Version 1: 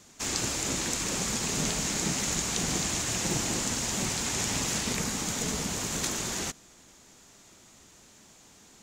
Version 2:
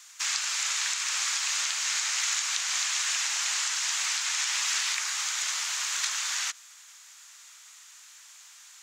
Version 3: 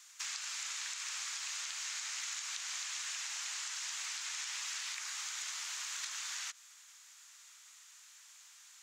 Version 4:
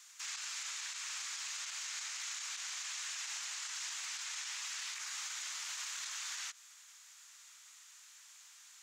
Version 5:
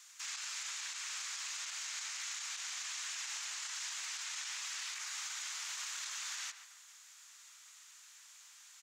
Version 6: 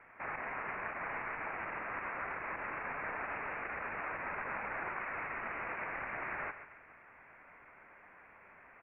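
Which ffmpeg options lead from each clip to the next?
-filter_complex "[0:a]acrossover=split=7100[a][b];[b]acompressor=threshold=-49dB:ratio=4:attack=1:release=60[c];[a][c]amix=inputs=2:normalize=0,highpass=f=1.2k:w=0.5412,highpass=f=1.2k:w=1.3066,asplit=2[d][e];[e]alimiter=limit=-22dB:level=0:latency=1:release=246,volume=0dB[f];[d][f]amix=inputs=2:normalize=0"
-af "equalizer=f=330:t=o:w=2.1:g=-3.5,acompressor=threshold=-32dB:ratio=3,volume=-7dB"
-af "alimiter=level_in=8.5dB:limit=-24dB:level=0:latency=1:release=17,volume=-8.5dB"
-filter_complex "[0:a]asplit=2[a][b];[b]adelay=139,lowpass=f=2.6k:p=1,volume=-9.5dB,asplit=2[c][d];[d]adelay=139,lowpass=f=2.6k:p=1,volume=0.46,asplit=2[e][f];[f]adelay=139,lowpass=f=2.6k:p=1,volume=0.46,asplit=2[g][h];[h]adelay=139,lowpass=f=2.6k:p=1,volume=0.46,asplit=2[i][j];[j]adelay=139,lowpass=f=2.6k:p=1,volume=0.46[k];[a][c][e][g][i][k]amix=inputs=6:normalize=0"
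-af "lowpass=f=2.9k:t=q:w=0.5098,lowpass=f=2.9k:t=q:w=0.6013,lowpass=f=2.9k:t=q:w=0.9,lowpass=f=2.9k:t=q:w=2.563,afreqshift=-3400,volume=8.5dB"

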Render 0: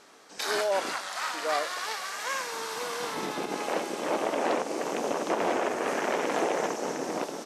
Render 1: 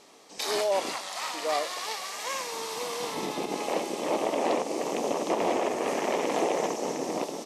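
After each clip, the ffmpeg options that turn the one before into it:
-af "equalizer=f=1.5k:t=o:w=0.42:g=-13,volume=1.5dB"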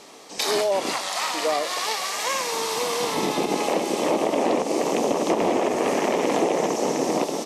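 -filter_complex "[0:a]acrossover=split=350[a][b];[b]acompressor=threshold=-30dB:ratio=6[c];[a][c]amix=inputs=2:normalize=0,volume=9dB"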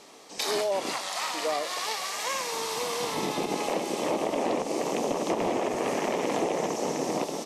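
-af "asubboost=boost=2:cutoff=150,volume=-5dB"

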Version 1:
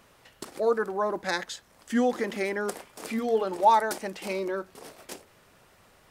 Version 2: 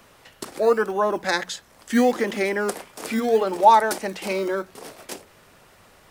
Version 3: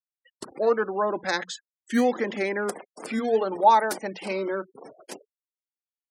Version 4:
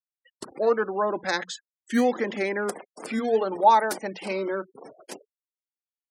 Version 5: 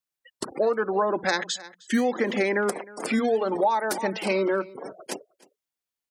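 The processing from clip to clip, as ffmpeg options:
-filter_complex "[0:a]bandreject=f=60:t=h:w=6,bandreject=f=120:t=h:w=6,bandreject=f=180:t=h:w=6,acrossover=split=270|1200|2500[a][b][c][d];[a]acrusher=samples=20:mix=1:aa=0.000001:lfo=1:lforange=12:lforate=0.74[e];[e][b][c][d]amix=inputs=4:normalize=0,volume=6dB"
-af "agate=range=-33dB:threshold=-50dB:ratio=3:detection=peak,afftfilt=real='re*gte(hypot(re,im),0.0178)':imag='im*gte(hypot(re,im),0.0178)':win_size=1024:overlap=0.75,volume=-3.5dB"
-af anull
-af "aecho=1:1:309:0.0668,acompressor=threshold=-26dB:ratio=12,volume=6.5dB"

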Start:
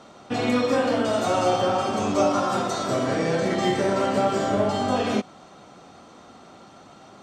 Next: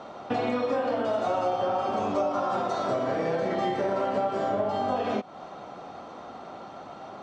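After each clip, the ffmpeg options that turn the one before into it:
-af "lowpass=4.7k,equalizer=f=730:t=o:w=1.8:g=8.5,acompressor=threshold=-26dB:ratio=4"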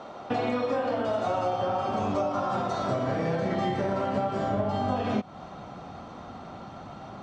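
-af "asubboost=boost=4.5:cutoff=190"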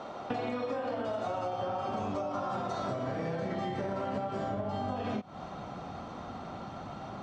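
-af "acompressor=threshold=-31dB:ratio=6"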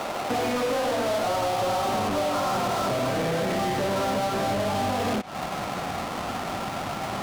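-filter_complex "[0:a]volume=33.5dB,asoftclip=hard,volume=-33.5dB,asplit=2[a][b];[b]highpass=f=720:p=1,volume=31dB,asoftclip=type=tanh:threshold=-33dB[c];[a][c]amix=inputs=2:normalize=0,lowpass=f=2.6k:p=1,volume=-6dB,acrusher=bits=5:mix=0:aa=0.5,volume=9dB"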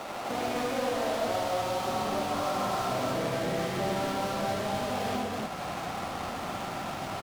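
-af "aecho=1:1:75.8|253.6:0.708|0.891,volume=-8dB"

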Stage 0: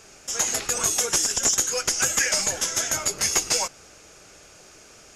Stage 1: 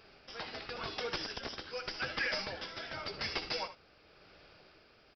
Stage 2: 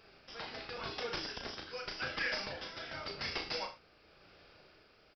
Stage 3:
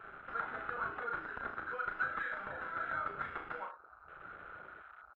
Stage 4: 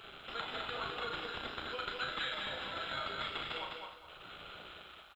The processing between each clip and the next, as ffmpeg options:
-af "aresample=11025,asoftclip=type=hard:threshold=-20dB,aresample=44100,tremolo=f=0.9:d=0.41,aecho=1:1:63|75:0.168|0.2,volume=-7.5dB"
-filter_complex "[0:a]asplit=2[a][b];[b]adelay=35,volume=-5dB[c];[a][c]amix=inputs=2:normalize=0,volume=-2.5dB"
-af "acompressor=threshold=-47dB:ratio=6,lowpass=f=1.4k:t=q:w=7.1,afwtdn=0.00178,volume=4dB"
-filter_complex "[0:a]highshelf=f=2.3k:t=q:w=3:g=13.5,asplit=2[a][b];[b]aecho=0:1:207|414|621|828:0.631|0.177|0.0495|0.0139[c];[a][c]amix=inputs=2:normalize=0,volume=2dB"

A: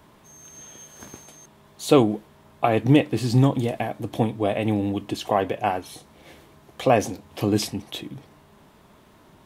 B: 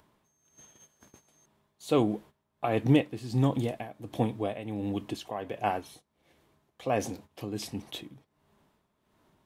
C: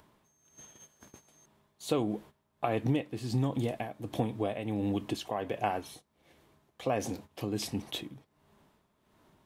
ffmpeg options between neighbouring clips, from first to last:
-af "acompressor=mode=upward:threshold=-41dB:ratio=2.5,agate=range=-13dB:threshold=-42dB:ratio=16:detection=peak,tremolo=f=1.4:d=0.69,volume=-5dB"
-af "acompressor=threshold=-29dB:ratio=4,volume=2.5dB"

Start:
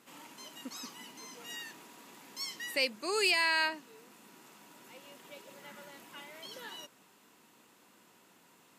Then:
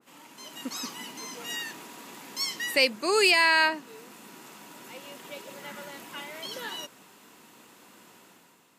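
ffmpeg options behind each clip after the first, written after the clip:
-af "dynaudnorm=f=110:g=9:m=9dB,adynamicequalizer=threshold=0.02:dfrequency=2100:dqfactor=0.7:tfrequency=2100:tqfactor=0.7:attack=5:release=100:ratio=0.375:range=2:mode=cutabove:tftype=highshelf"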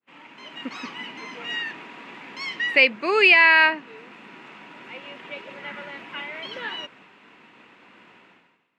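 -af "agate=range=-33dB:threshold=-52dB:ratio=3:detection=peak,lowpass=f=2.4k:t=q:w=2.2,volume=2.5dB"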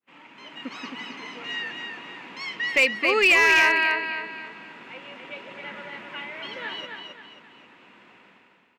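-filter_complex "[0:a]aecho=1:1:266|532|798|1064|1330:0.562|0.219|0.0855|0.0334|0.013,asplit=2[a][b];[b]aeval=exprs='0.316*(abs(mod(val(0)/0.316+3,4)-2)-1)':c=same,volume=-3dB[c];[a][c]amix=inputs=2:normalize=0,volume=-7dB"

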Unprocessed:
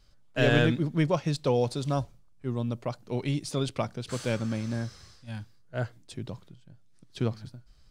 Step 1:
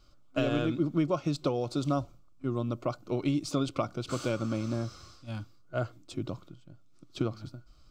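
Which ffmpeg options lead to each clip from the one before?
-af "acompressor=threshold=-28dB:ratio=6,superequalizer=6b=2.51:8b=1.58:10b=2.24:11b=0.398:16b=0.447"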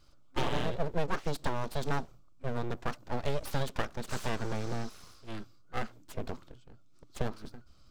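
-af "aeval=exprs='abs(val(0))':c=same"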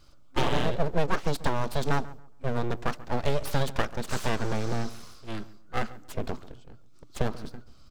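-filter_complex "[0:a]asplit=2[a][b];[b]adelay=138,lowpass=f=1.8k:p=1,volume=-17.5dB,asplit=2[c][d];[d]adelay=138,lowpass=f=1.8k:p=1,volume=0.28,asplit=2[e][f];[f]adelay=138,lowpass=f=1.8k:p=1,volume=0.28[g];[a][c][e][g]amix=inputs=4:normalize=0,volume=5.5dB"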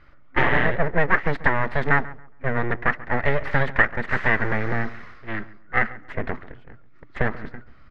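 -af "lowpass=f=1.9k:t=q:w=7.3,volume=3.5dB"

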